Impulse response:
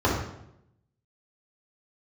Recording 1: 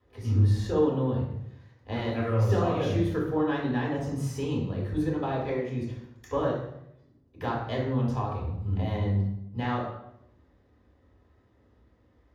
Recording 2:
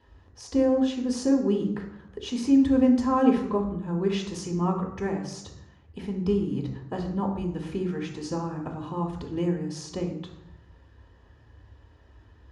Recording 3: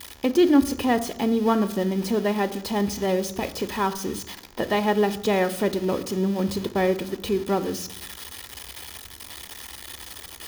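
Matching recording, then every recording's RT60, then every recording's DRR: 1; 0.80 s, 0.80 s, 0.80 s; -6.0 dB, 0.5 dB, 10.0 dB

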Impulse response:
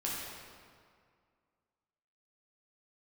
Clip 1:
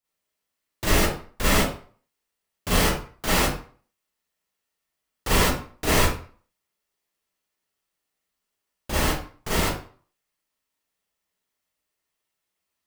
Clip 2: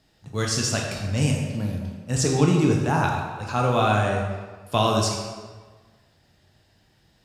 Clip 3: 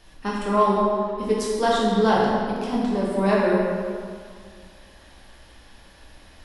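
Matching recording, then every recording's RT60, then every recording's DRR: 3; 0.45 s, 1.4 s, 2.1 s; -9.5 dB, -0.5 dB, -6.0 dB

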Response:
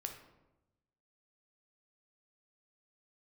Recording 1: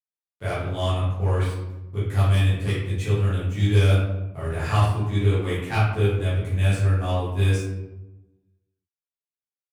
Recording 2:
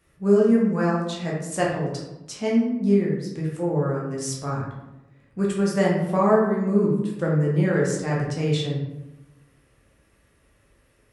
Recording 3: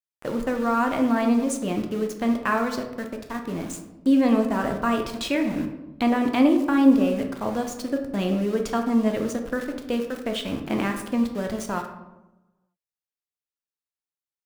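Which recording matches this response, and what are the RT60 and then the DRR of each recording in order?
3; 1.0 s, 1.0 s, 1.0 s; -11.0 dB, -4.5 dB, 3.5 dB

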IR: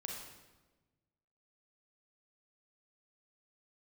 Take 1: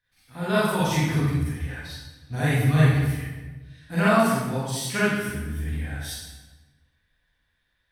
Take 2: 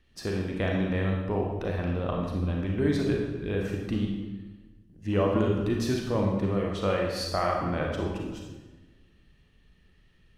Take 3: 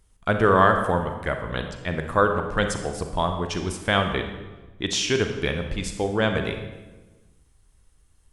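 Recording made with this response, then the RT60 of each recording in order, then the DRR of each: 2; 1.2 s, 1.2 s, 1.2 s; -10.5 dB, -0.5 dB, 5.0 dB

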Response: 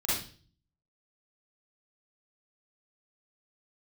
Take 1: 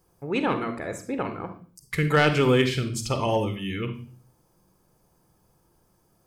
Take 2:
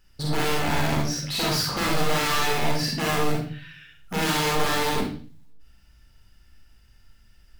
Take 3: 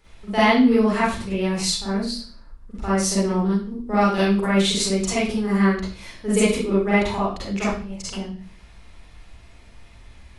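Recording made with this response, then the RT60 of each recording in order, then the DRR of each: 3; 0.45 s, 0.45 s, 0.45 s; 7.5 dB, -2.0 dB, -10.0 dB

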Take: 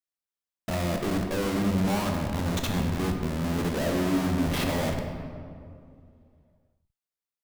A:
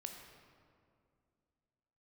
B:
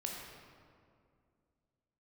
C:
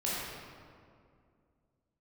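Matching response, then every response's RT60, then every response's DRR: A; 2.3 s, 2.3 s, 2.3 s; 3.0 dB, -1.0 dB, -8.0 dB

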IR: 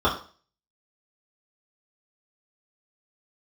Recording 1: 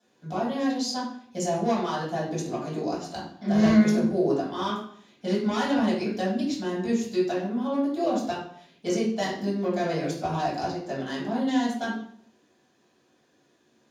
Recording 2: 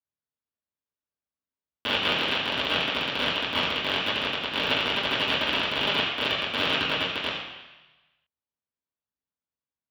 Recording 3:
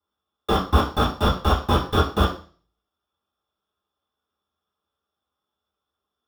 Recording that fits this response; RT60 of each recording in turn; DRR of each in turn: 3; 0.60 s, 1.1 s, 0.40 s; -10.5 dB, -10.5 dB, -8.5 dB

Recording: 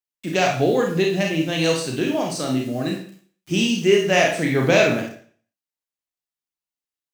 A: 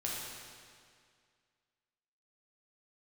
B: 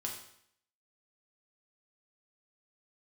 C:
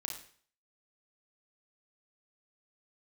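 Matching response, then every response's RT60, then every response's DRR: C; 2.1 s, 0.65 s, 0.50 s; -5.0 dB, -1.5 dB, 0.0 dB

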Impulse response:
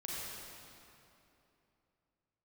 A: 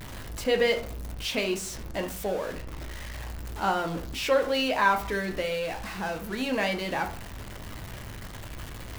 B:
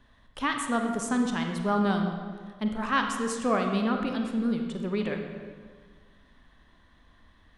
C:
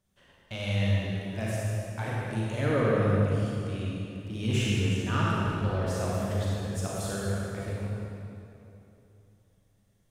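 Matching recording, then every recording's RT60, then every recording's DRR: C; 0.45 s, 1.7 s, 3.0 s; 4.0 dB, 3.5 dB, -6.0 dB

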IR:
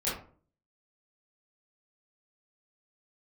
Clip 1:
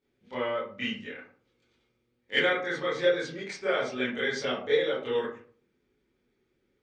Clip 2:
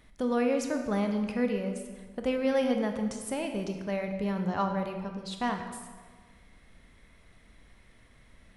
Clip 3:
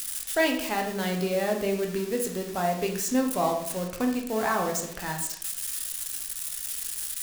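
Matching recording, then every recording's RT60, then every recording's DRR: 1; 0.45 s, 1.5 s, 0.75 s; -10.5 dB, 4.5 dB, 1.5 dB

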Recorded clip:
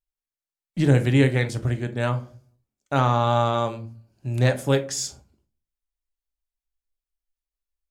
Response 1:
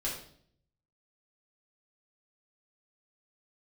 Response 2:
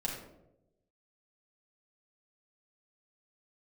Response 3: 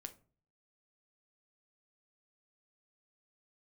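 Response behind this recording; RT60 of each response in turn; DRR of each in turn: 3; 0.60 s, 0.95 s, 0.45 s; -6.5 dB, -3.5 dB, 7.5 dB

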